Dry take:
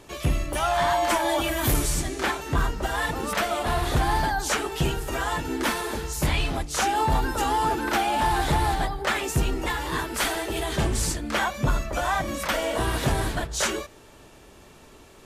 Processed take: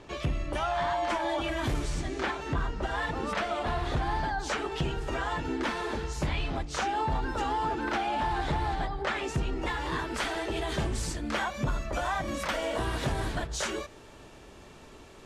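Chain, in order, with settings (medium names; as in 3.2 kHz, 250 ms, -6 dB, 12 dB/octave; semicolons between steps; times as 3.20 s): treble shelf 10 kHz -12 dB, from 9.63 s -4 dB, from 10.69 s +8.5 dB; compression 2.5:1, threshold -29 dBFS, peak gain reduction 7.5 dB; distance through air 70 m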